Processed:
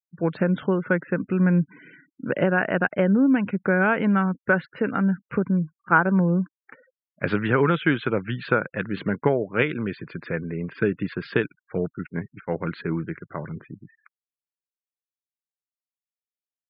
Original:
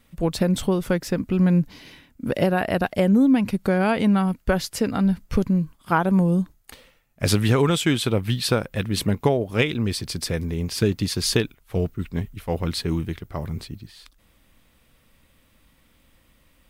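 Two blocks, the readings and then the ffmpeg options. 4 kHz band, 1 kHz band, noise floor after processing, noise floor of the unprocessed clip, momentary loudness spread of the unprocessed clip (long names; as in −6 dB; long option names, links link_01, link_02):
−13.5 dB, +0.5 dB, below −85 dBFS, −61 dBFS, 11 LU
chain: -af "highpass=frequency=140:width=0.5412,highpass=frequency=140:width=1.3066,equalizer=frequency=230:width_type=q:width=4:gain=-4,equalizer=frequency=730:width_type=q:width=4:gain=-4,equalizer=frequency=1500:width_type=q:width=4:gain=9,lowpass=frequency=2500:width=0.5412,lowpass=frequency=2500:width=1.3066,afftfilt=real='re*gte(hypot(re,im),0.00794)':imag='im*gte(hypot(re,im),0.00794)':win_size=1024:overlap=0.75"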